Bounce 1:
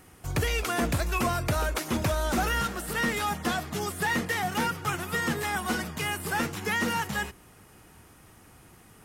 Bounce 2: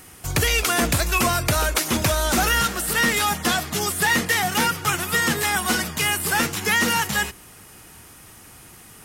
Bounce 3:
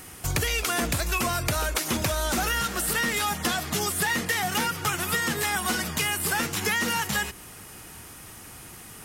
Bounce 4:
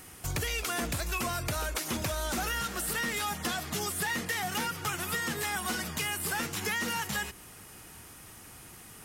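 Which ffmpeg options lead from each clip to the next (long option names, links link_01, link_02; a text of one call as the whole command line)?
ffmpeg -i in.wav -af "highshelf=frequency=2100:gain=9,volume=4.5dB" out.wav
ffmpeg -i in.wav -af "acompressor=threshold=-25dB:ratio=5,volume=1.5dB" out.wav
ffmpeg -i in.wav -af "asoftclip=type=tanh:threshold=-15.5dB,volume=-5.5dB" out.wav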